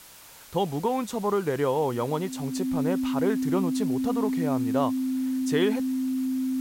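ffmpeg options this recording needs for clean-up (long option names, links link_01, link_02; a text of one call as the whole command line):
ffmpeg -i in.wav -af "bandreject=frequency=260:width=30,afwtdn=0.004" out.wav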